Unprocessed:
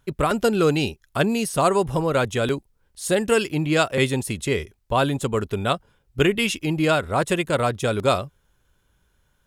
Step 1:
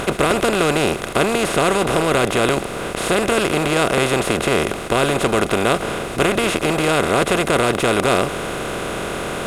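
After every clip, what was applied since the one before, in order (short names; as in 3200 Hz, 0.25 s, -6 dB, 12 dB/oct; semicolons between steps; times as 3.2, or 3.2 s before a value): per-bin compression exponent 0.2; gain -5 dB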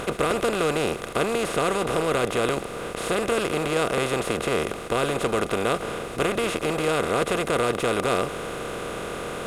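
small resonant body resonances 480/1200 Hz, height 6 dB; gain -8 dB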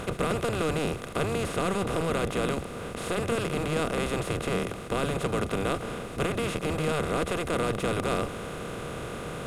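octaver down 1 oct, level +3 dB; gain -5.5 dB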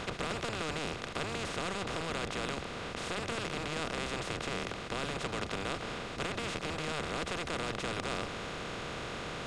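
air absorption 150 m; spectral compressor 2:1; gain -3 dB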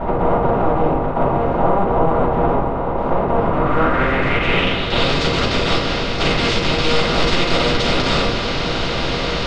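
low-pass sweep 890 Hz -> 4800 Hz, 3.37–5.15; shoebox room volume 350 m³, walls furnished, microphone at 7.3 m; gain +5.5 dB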